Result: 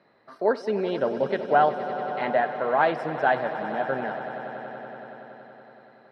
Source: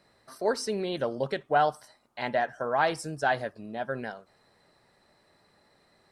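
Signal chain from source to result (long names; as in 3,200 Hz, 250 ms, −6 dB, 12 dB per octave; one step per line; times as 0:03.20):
high-pass filter 190 Hz 12 dB per octave
high-frequency loss of the air 370 metres
echo that builds up and dies away 94 ms, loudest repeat 5, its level −15.5 dB
level +5.5 dB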